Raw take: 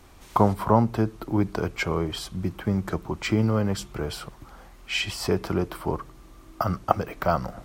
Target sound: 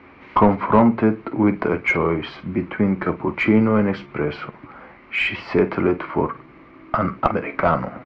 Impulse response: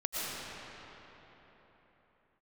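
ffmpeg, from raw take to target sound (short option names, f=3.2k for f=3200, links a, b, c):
-filter_complex "[0:a]highpass=150,equalizer=f=260:t=q:w=4:g=5,equalizer=f=740:t=q:w=4:g=-5,equalizer=f=2.2k:t=q:w=4:g=9,equalizer=f=3.5k:t=q:w=4:g=-7,lowpass=f=3.9k:w=0.5412,lowpass=f=3.9k:w=1.3066,aecho=1:1:14|47:0.266|0.2,asplit=2[a][b];[b]highpass=f=720:p=1,volume=16dB,asoftclip=type=tanh:threshold=-4dB[c];[a][c]amix=inputs=2:normalize=0,lowpass=f=2.1k:p=1,volume=-6dB,atempo=0.95,aemphasis=mode=reproduction:type=bsi"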